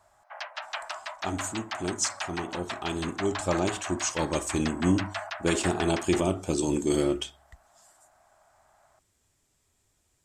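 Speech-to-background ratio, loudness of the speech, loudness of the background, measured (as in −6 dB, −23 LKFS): 7.5 dB, −29.0 LKFS, −36.5 LKFS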